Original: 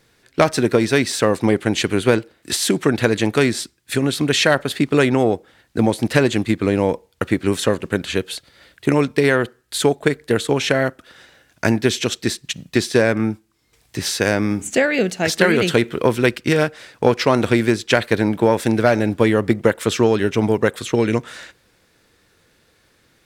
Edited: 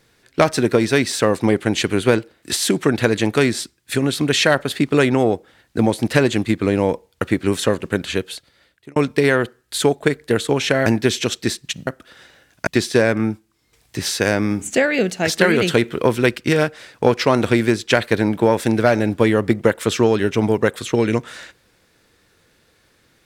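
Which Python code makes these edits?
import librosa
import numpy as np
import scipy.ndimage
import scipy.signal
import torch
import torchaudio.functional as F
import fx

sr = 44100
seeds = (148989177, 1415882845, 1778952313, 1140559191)

y = fx.edit(x, sr, fx.fade_out_span(start_s=8.1, length_s=0.86),
    fx.move(start_s=10.86, length_s=0.8, to_s=12.67), tone=tone)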